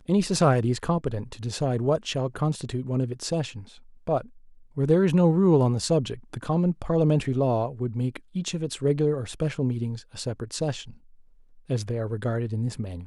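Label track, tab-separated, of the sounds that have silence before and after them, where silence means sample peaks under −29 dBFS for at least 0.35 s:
4.070000	4.210000	sound
4.770000	10.810000	sound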